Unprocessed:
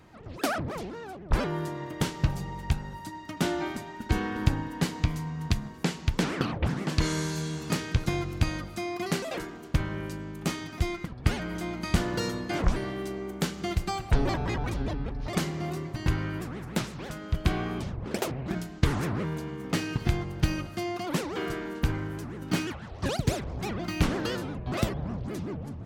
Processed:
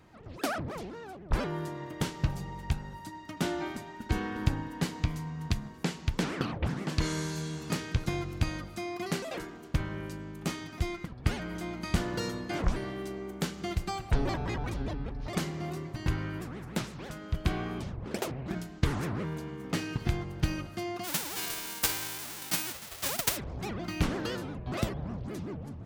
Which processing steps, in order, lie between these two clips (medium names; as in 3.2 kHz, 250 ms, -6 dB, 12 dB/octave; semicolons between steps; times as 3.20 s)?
21.03–23.36 s: formants flattened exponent 0.1; trim -3.5 dB